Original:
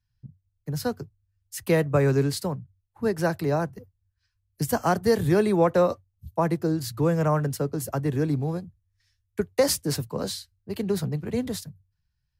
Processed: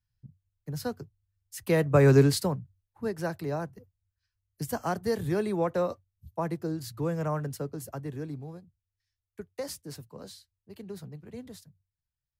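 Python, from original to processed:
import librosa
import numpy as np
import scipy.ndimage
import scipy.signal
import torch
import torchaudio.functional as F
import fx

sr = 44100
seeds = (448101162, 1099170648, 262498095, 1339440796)

y = fx.gain(x, sr, db=fx.line((1.6, -5.5), (2.16, 4.0), (3.13, -7.5), (7.62, -7.5), (8.62, -15.0)))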